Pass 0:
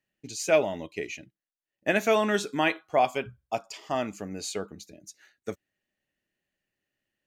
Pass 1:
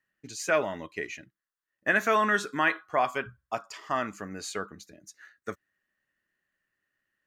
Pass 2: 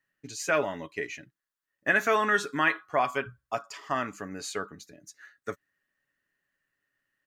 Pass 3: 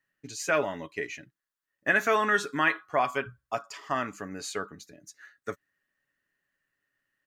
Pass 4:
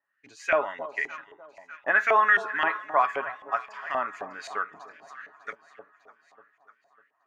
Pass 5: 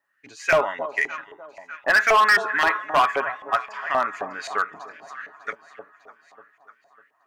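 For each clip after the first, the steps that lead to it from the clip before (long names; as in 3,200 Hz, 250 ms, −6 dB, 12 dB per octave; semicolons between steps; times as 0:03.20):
flat-topped bell 1,400 Hz +11 dB 1.1 octaves; in parallel at −3 dB: brickwall limiter −14.5 dBFS, peak gain reduction 8.5 dB; on the sum: level −7.5 dB
comb filter 7.1 ms, depth 33%
no processing that can be heard
delay that swaps between a low-pass and a high-pass 300 ms, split 900 Hz, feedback 69%, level −12.5 dB; auto-filter band-pass saw up 3.8 Hz 700–2,400 Hz; level +8.5 dB
hard clipping −19 dBFS, distortion −11 dB; level +6.5 dB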